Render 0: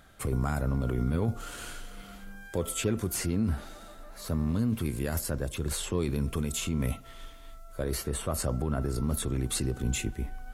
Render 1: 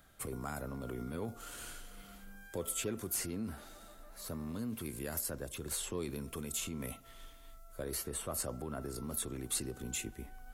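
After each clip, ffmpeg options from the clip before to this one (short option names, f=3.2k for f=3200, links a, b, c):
-filter_complex "[0:a]highshelf=f=9.1k:g=10,acrossover=split=220[a][b];[a]acompressor=threshold=-38dB:ratio=6[c];[c][b]amix=inputs=2:normalize=0,volume=-7.5dB"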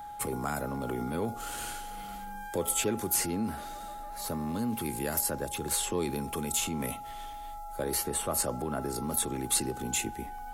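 -filter_complex "[0:a]acrossover=split=130|3200[a][b][c];[a]alimiter=level_in=26.5dB:limit=-24dB:level=0:latency=1,volume=-26.5dB[d];[d][b][c]amix=inputs=3:normalize=0,aeval=exprs='val(0)+0.00398*sin(2*PI*830*n/s)':c=same,volume=8dB"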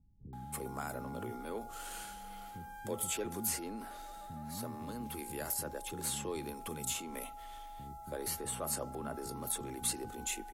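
-filter_complex "[0:a]acrossover=split=230[a][b];[b]adelay=330[c];[a][c]amix=inputs=2:normalize=0,volume=-7dB"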